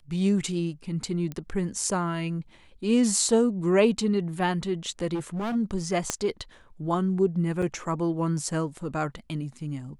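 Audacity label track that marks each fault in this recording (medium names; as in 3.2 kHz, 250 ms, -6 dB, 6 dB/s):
1.320000	1.320000	pop -22 dBFS
5.140000	5.560000	clipped -27 dBFS
6.100000	6.100000	pop -10 dBFS
7.620000	7.620000	dropout 4.8 ms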